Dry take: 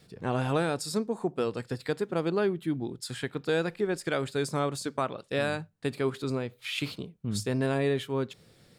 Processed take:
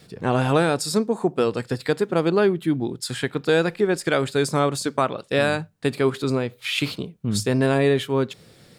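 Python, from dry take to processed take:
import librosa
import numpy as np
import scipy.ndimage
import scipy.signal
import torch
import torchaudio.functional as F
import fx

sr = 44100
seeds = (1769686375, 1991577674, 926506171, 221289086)

y = fx.low_shelf(x, sr, hz=60.0, db=-6.0)
y = y * librosa.db_to_amplitude(8.5)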